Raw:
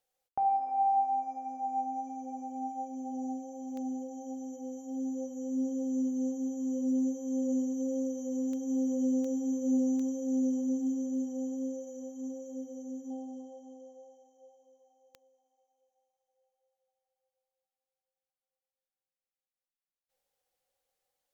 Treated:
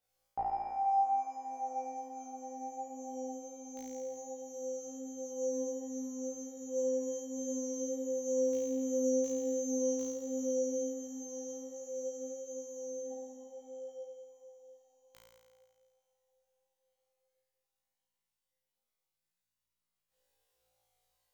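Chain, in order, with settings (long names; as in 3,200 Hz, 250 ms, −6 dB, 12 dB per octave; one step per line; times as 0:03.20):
multi-voice chorus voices 6, 0.15 Hz, delay 18 ms, depth 1.6 ms
flutter between parallel walls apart 3 metres, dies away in 1.4 s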